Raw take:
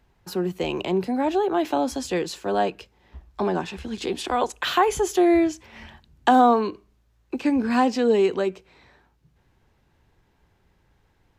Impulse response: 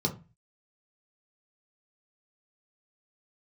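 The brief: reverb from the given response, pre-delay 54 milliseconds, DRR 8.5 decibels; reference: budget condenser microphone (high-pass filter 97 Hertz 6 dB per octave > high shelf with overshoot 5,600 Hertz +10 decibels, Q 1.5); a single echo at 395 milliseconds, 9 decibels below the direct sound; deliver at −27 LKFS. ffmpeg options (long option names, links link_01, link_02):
-filter_complex "[0:a]aecho=1:1:395:0.355,asplit=2[link_01][link_02];[1:a]atrim=start_sample=2205,adelay=54[link_03];[link_02][link_03]afir=irnorm=-1:irlink=0,volume=-15.5dB[link_04];[link_01][link_04]amix=inputs=2:normalize=0,highpass=frequency=97:poles=1,highshelf=frequency=5600:width_type=q:width=1.5:gain=10,volume=-6dB"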